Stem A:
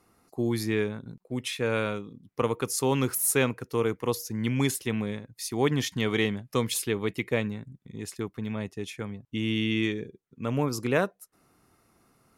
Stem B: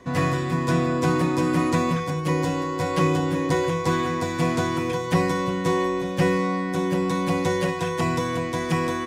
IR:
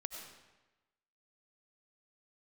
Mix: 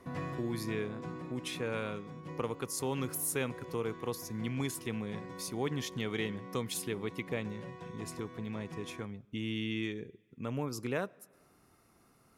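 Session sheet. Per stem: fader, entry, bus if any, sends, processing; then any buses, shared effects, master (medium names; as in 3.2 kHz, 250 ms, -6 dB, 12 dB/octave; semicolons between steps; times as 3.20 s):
-2.0 dB, 0.00 s, send -22.5 dB, none
-8.5 dB, 0.00 s, no send, low-pass 2.9 kHz 6 dB/octave; auto duck -10 dB, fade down 1.30 s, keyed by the first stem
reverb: on, RT60 1.1 s, pre-delay 55 ms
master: compression 1.5:1, threshold -45 dBFS, peak gain reduction 9 dB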